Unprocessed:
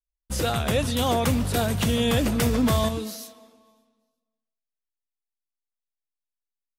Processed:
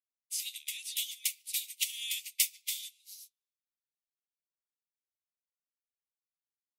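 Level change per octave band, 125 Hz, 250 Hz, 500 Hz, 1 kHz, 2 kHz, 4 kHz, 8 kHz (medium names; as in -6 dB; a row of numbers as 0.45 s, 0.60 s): under -40 dB, under -40 dB, under -40 dB, under -40 dB, -11.0 dB, -5.5 dB, -1.0 dB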